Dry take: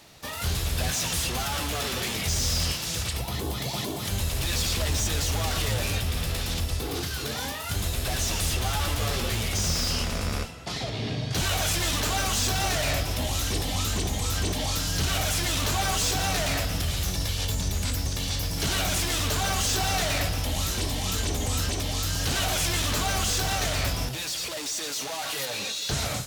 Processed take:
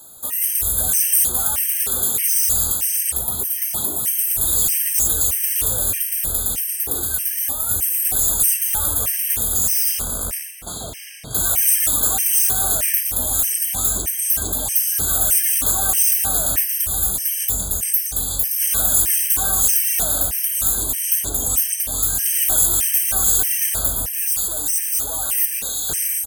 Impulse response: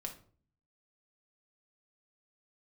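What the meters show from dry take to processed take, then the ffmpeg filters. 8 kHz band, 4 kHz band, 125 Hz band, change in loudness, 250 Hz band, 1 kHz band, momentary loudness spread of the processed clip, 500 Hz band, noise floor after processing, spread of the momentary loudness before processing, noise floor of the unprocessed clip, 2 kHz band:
+12.0 dB, −3.5 dB, −6.5 dB, +10.0 dB, −4.0 dB, −2.5 dB, 6 LU, −3.0 dB, −28 dBFS, 6 LU, −33 dBFS, −3.0 dB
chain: -filter_complex "[0:a]equalizer=frequency=110:width_type=o:width=1.2:gain=-6,asplit=2[link_01][link_02];[link_02]adelay=1160,lowpass=frequency=3100:poles=1,volume=-11.5dB,asplit=2[link_03][link_04];[link_04]adelay=1160,lowpass=frequency=3100:poles=1,volume=0.55,asplit=2[link_05][link_06];[link_06]adelay=1160,lowpass=frequency=3100:poles=1,volume=0.55,asplit=2[link_07][link_08];[link_08]adelay=1160,lowpass=frequency=3100:poles=1,volume=0.55,asplit=2[link_09][link_10];[link_10]adelay=1160,lowpass=frequency=3100:poles=1,volume=0.55,asplit=2[link_11][link_12];[link_12]adelay=1160,lowpass=frequency=3100:poles=1,volume=0.55[link_13];[link_03][link_05][link_07][link_09][link_11][link_13]amix=inputs=6:normalize=0[link_14];[link_01][link_14]amix=inputs=2:normalize=0,aexciter=amount=6.2:drive=9.6:freq=7400,afftfilt=real='re*gt(sin(2*PI*1.6*pts/sr)*(1-2*mod(floor(b*sr/1024/1600),2)),0)':imag='im*gt(sin(2*PI*1.6*pts/sr)*(1-2*mod(floor(b*sr/1024/1600),2)),0)':win_size=1024:overlap=0.75"

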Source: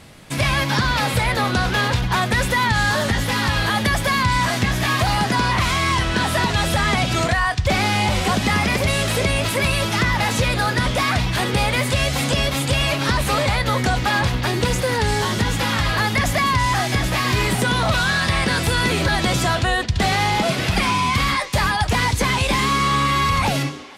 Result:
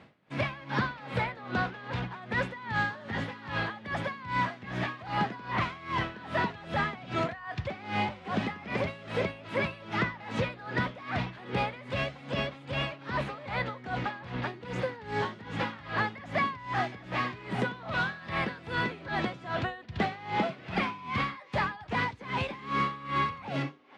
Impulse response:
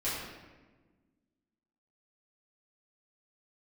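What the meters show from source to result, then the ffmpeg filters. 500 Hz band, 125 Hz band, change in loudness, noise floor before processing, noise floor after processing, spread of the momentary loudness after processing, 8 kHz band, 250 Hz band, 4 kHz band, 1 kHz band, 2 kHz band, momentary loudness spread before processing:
−11.0 dB, −15.5 dB, −13.5 dB, −24 dBFS, −49 dBFS, 4 LU, −31.5 dB, −12.0 dB, −19.0 dB, −12.0 dB, −13.0 dB, 2 LU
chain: -af "highpass=140,lowpass=2400,aeval=exprs='val(0)*pow(10,-19*(0.5-0.5*cos(2*PI*2.5*n/s))/20)':channel_layout=same,volume=-6dB"

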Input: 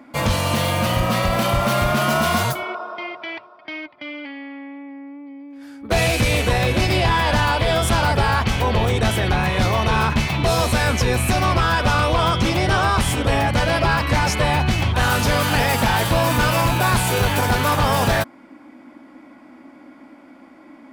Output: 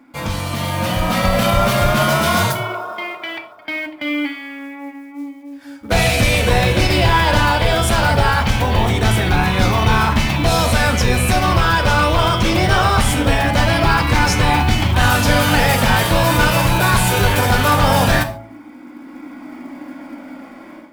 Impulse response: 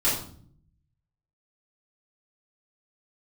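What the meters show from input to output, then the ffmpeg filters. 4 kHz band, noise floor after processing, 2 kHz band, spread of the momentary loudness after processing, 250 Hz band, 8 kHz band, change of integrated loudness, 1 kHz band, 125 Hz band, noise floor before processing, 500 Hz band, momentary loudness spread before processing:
+3.5 dB, −38 dBFS, +4.0 dB, 18 LU, +4.0 dB, +3.5 dB, +3.0 dB, +3.0 dB, +3.5 dB, −46 dBFS, +2.5 dB, 15 LU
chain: -filter_complex "[0:a]bandreject=frequency=55.7:width_type=h:width=4,bandreject=frequency=111.4:width_type=h:width=4,bandreject=frequency=167.1:width_type=h:width=4,bandreject=frequency=222.8:width_type=h:width=4,bandreject=frequency=278.5:width_type=h:width=4,bandreject=frequency=334.2:width_type=h:width=4,bandreject=frequency=389.9:width_type=h:width=4,bandreject=frequency=445.6:width_type=h:width=4,bandreject=frequency=501.3:width_type=h:width=4,bandreject=frequency=557:width_type=h:width=4,bandreject=frequency=612.7:width_type=h:width=4,bandreject=frequency=668.4:width_type=h:width=4,bandreject=frequency=724.1:width_type=h:width=4,bandreject=frequency=779.8:width_type=h:width=4,bandreject=frequency=835.5:width_type=h:width=4,bandreject=frequency=891.2:width_type=h:width=4,bandreject=frequency=946.9:width_type=h:width=4,bandreject=frequency=1002.6:width_type=h:width=4,bandreject=frequency=1058.3:width_type=h:width=4,bandreject=frequency=1114:width_type=h:width=4,bandreject=frequency=1169.7:width_type=h:width=4,bandreject=frequency=1225.4:width_type=h:width=4,bandreject=frequency=1281.1:width_type=h:width=4,bandreject=frequency=1336.8:width_type=h:width=4,bandreject=frequency=1392.5:width_type=h:width=4,dynaudnorm=framelen=610:gausssize=3:maxgain=14.5dB,flanger=delay=0.8:depth=1.2:regen=-74:speed=0.21:shape=sinusoidal,acrusher=bits=7:mode=log:mix=0:aa=0.000001,asplit=2[link_01][link_02];[1:a]atrim=start_sample=2205,atrim=end_sample=6615[link_03];[link_02][link_03]afir=irnorm=-1:irlink=0,volume=-19dB[link_04];[link_01][link_04]amix=inputs=2:normalize=0,volume=-1dB"

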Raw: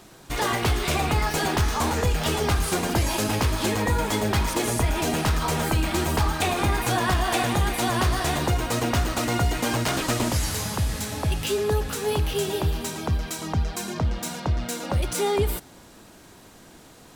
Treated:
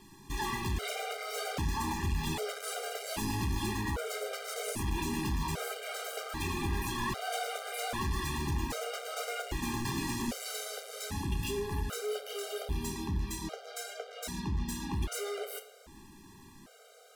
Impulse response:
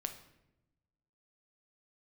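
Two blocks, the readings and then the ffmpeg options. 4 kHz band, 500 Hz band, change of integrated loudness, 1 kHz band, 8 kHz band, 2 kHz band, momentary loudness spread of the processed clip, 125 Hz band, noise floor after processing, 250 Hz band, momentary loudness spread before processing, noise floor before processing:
−10.0 dB, −11.5 dB, −11.0 dB, −11.5 dB, −10.0 dB, −10.5 dB, 8 LU, −12.0 dB, −55 dBFS, −10.0 dB, 5 LU, −49 dBFS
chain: -filter_complex "[0:a]asoftclip=type=hard:threshold=-25.5dB[link_01];[1:a]atrim=start_sample=2205,asetrate=61740,aresample=44100[link_02];[link_01][link_02]afir=irnorm=-1:irlink=0,afftfilt=real='re*gt(sin(2*PI*0.63*pts/sr)*(1-2*mod(floor(b*sr/1024/400),2)),0)':imag='im*gt(sin(2*PI*0.63*pts/sr)*(1-2*mod(floor(b*sr/1024/400),2)),0)':win_size=1024:overlap=0.75"

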